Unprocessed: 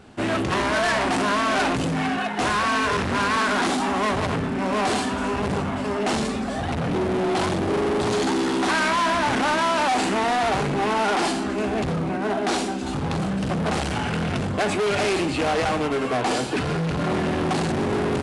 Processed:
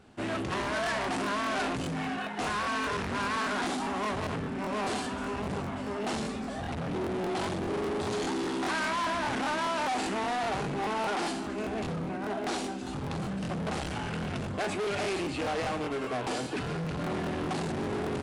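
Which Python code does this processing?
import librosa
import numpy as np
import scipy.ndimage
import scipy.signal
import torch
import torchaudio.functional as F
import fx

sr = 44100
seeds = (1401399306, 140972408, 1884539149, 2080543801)

y = fx.buffer_crackle(x, sr, first_s=0.62, period_s=0.2, block=1024, kind='repeat')
y = y * librosa.db_to_amplitude(-9.0)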